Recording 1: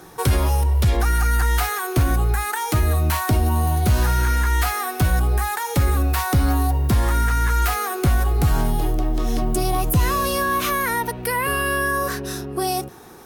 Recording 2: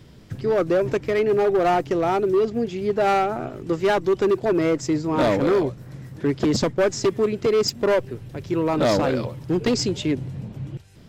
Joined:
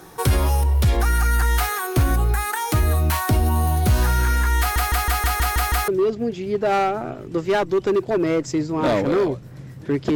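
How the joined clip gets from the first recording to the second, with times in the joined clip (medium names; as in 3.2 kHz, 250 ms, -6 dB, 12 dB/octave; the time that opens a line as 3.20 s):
recording 1
4.60 s: stutter in place 0.16 s, 8 plays
5.88 s: go over to recording 2 from 2.23 s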